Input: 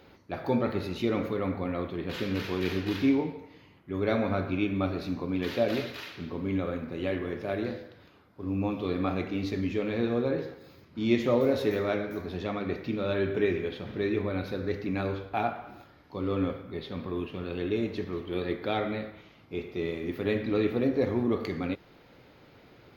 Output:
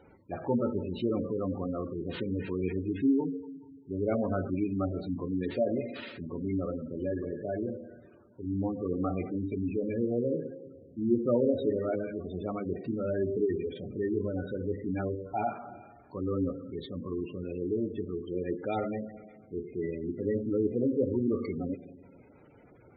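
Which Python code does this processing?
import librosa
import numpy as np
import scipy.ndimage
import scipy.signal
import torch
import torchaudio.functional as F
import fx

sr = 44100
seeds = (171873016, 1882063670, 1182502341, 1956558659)

y = fx.rev_schroeder(x, sr, rt60_s=1.8, comb_ms=33, drr_db=12.5)
y = fx.spec_gate(y, sr, threshold_db=-15, keep='strong')
y = F.gain(torch.from_numpy(y), -1.5).numpy()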